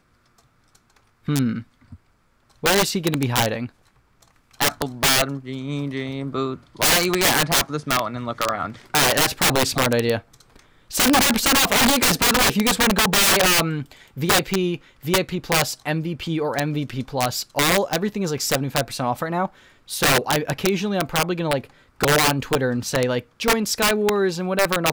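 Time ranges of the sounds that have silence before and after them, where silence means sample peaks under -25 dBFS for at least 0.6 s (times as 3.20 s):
1.28–1.59 s
2.64–3.66 s
4.61–10.19 s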